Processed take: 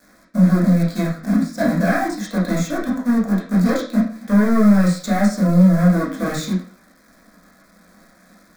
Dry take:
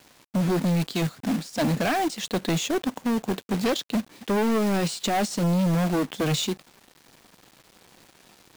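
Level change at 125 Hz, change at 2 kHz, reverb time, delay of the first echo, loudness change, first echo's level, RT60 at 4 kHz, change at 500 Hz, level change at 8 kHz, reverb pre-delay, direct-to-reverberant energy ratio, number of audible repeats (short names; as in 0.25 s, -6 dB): +8.5 dB, +5.5 dB, 0.40 s, none, +7.5 dB, none, 0.40 s, +3.5 dB, -1.0 dB, 7 ms, -7.0 dB, none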